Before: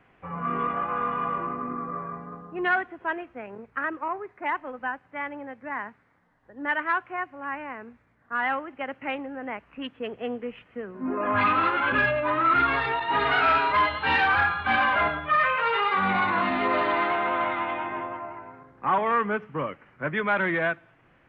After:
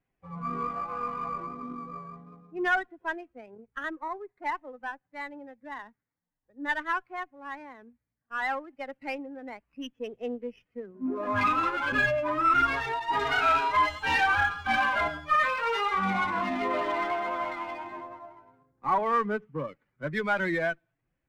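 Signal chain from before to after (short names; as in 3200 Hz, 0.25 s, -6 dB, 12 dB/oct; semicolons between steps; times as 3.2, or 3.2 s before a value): per-bin expansion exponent 1.5; running maximum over 3 samples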